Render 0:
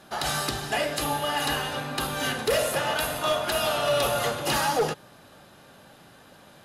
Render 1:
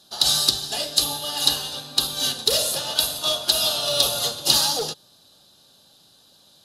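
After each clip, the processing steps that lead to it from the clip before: resonant high shelf 2900 Hz +11 dB, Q 3; upward expander 1.5:1, over -32 dBFS; gain -1 dB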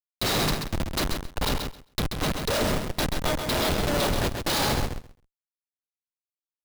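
Schmitt trigger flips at -18 dBFS; on a send: feedback echo 0.133 s, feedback 15%, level -6 dB

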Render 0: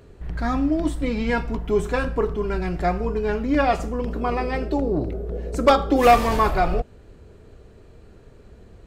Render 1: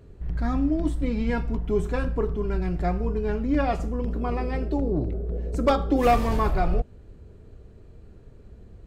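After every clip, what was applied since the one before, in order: low shelf 340 Hz +9.5 dB; gain -8 dB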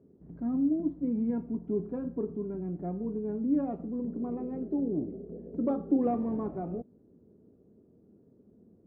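ladder band-pass 280 Hz, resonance 40%; gain +5.5 dB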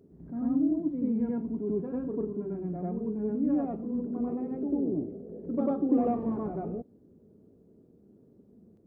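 reverse echo 95 ms -3.5 dB

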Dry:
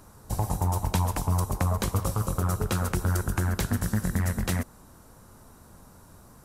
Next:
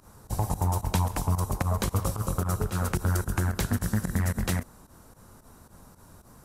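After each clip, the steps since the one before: pump 111 bpm, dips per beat 2, -15 dB, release 85 ms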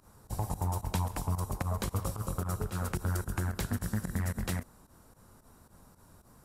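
notch 6200 Hz, Q 22; gain -6 dB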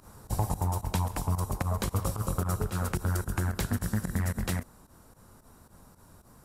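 vocal rider within 4 dB 0.5 s; gain +3.5 dB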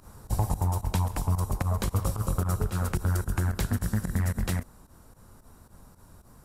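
low shelf 81 Hz +7 dB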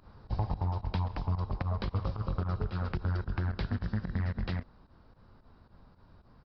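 downsampling 11025 Hz; gain -5 dB

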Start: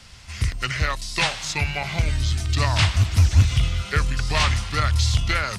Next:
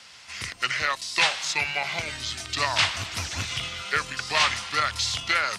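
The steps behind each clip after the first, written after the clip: weighting filter A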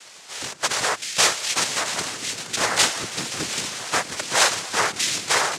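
noise vocoder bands 3; gain +3.5 dB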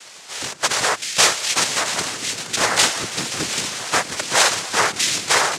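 maximiser +4.5 dB; gain -1 dB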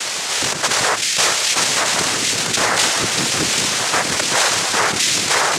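fast leveller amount 70%; gain -2.5 dB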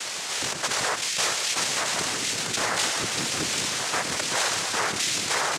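outdoor echo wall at 24 m, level -14 dB; gain -9 dB

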